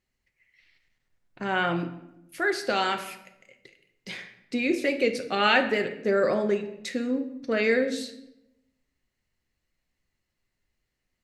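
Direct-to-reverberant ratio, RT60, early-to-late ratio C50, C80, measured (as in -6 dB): 5.5 dB, 0.85 s, 11.0 dB, 14.0 dB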